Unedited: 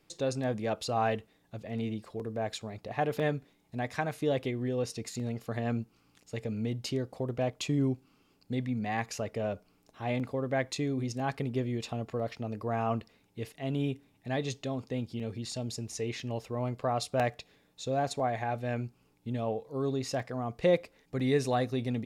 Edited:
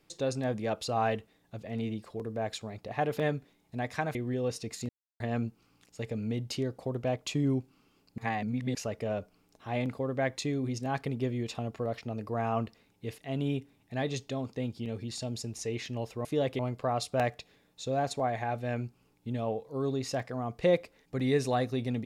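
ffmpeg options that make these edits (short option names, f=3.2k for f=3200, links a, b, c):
-filter_complex "[0:a]asplit=8[a][b][c][d][e][f][g][h];[a]atrim=end=4.152[i];[b]atrim=start=4.488:end=5.23,asetpts=PTS-STARTPTS,afade=t=out:st=0.738:d=0.004:c=hsin[j];[c]atrim=start=5.23:end=5.54,asetpts=PTS-STARTPTS,volume=0[k];[d]atrim=start=5.54:end=8.522,asetpts=PTS-STARTPTS,afade=t=in:d=0.004:c=hsin[l];[e]atrim=start=8.518:end=9.092,asetpts=PTS-STARTPTS,areverse[m];[f]atrim=start=9.088:end=16.592[n];[g]atrim=start=4.148:end=4.492[o];[h]atrim=start=16.588[p];[j][k][l]concat=n=3:v=0:a=1[q];[i][q]acrossfade=d=0.004:c1=hsin:c2=hsin[r];[r][m]acrossfade=d=0.004:c1=hsin:c2=hsin[s];[s][n]acrossfade=d=0.004:c1=hsin:c2=hsin[t];[t][o]acrossfade=d=0.004:c1=hsin:c2=hsin[u];[u][p]acrossfade=d=0.004:c1=hsin:c2=hsin"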